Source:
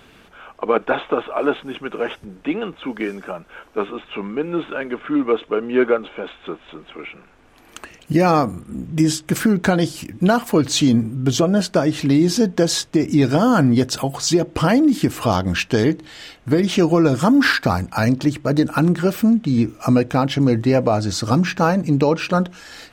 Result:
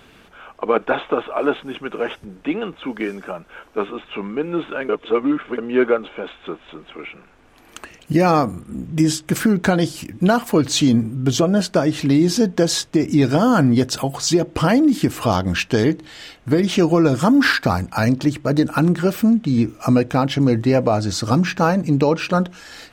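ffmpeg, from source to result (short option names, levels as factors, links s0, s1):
-filter_complex "[0:a]asplit=3[s0][s1][s2];[s0]atrim=end=4.892[s3];[s1]atrim=start=4.888:end=5.582,asetpts=PTS-STARTPTS,areverse[s4];[s2]atrim=start=5.578[s5];[s3][s4]acrossfade=d=0.004:c1=hsin:c2=hsin[s6];[s6][s5]acrossfade=d=0.004:c1=hsin:c2=hsin"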